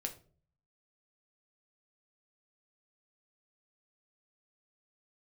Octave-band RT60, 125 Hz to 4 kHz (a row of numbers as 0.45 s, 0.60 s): 0.85 s, 0.60 s, 0.50 s, 0.35 s, 0.30 s, 0.30 s